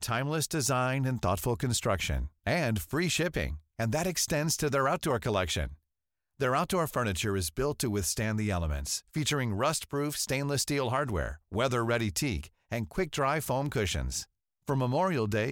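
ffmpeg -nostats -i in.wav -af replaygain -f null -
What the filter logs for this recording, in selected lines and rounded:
track_gain = +12.2 dB
track_peak = 0.118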